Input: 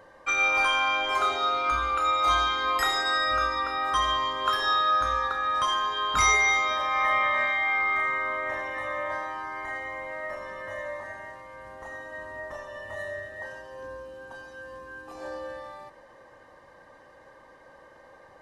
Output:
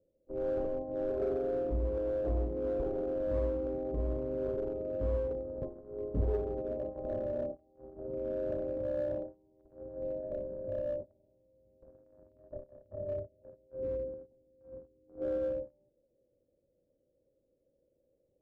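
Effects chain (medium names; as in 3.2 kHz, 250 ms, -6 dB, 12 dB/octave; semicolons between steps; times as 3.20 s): steep low-pass 550 Hz 48 dB/octave; gate -44 dBFS, range -25 dB; in parallel at -5 dB: hard clipper -38.5 dBFS, distortion -11 dB; on the sum: trim +3.5 dB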